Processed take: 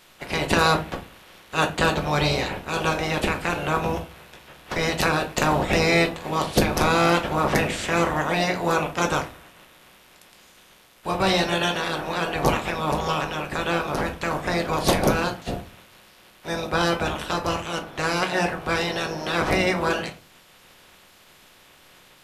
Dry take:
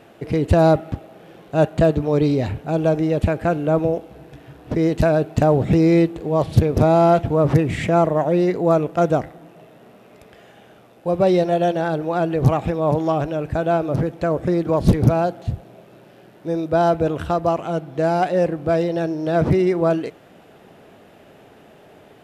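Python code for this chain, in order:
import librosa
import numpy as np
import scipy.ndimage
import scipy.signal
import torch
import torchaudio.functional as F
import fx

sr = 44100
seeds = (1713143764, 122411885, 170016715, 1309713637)

y = fx.spec_clip(x, sr, under_db=28)
y = fx.room_shoebox(y, sr, seeds[0], volume_m3=140.0, walls='furnished', distance_m=0.99)
y = y * librosa.db_to_amplitude(-6.5)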